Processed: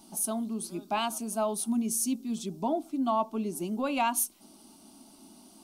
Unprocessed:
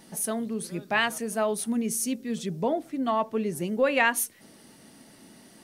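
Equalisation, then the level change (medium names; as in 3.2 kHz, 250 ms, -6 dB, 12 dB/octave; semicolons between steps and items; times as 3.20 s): static phaser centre 490 Hz, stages 6; 0.0 dB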